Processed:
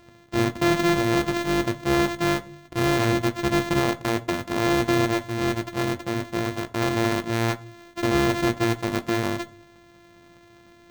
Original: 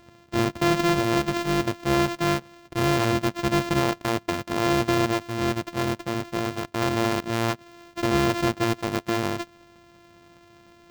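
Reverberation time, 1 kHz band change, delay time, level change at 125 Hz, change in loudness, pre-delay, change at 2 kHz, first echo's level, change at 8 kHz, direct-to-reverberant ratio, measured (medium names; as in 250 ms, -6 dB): 0.45 s, -0.5 dB, no echo, +0.5 dB, +1.0 dB, 17 ms, +1.5 dB, no echo, +0.5 dB, 9.0 dB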